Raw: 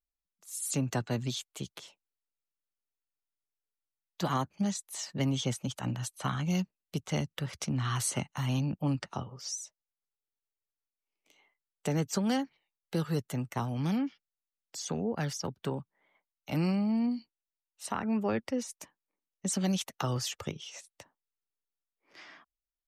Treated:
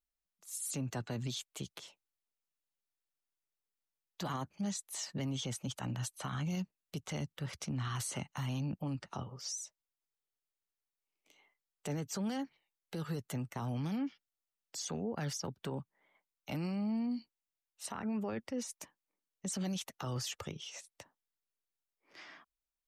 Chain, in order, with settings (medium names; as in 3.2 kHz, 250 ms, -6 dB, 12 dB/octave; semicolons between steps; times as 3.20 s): peak limiter -28.5 dBFS, peak gain reduction 9.5 dB; trim -1.5 dB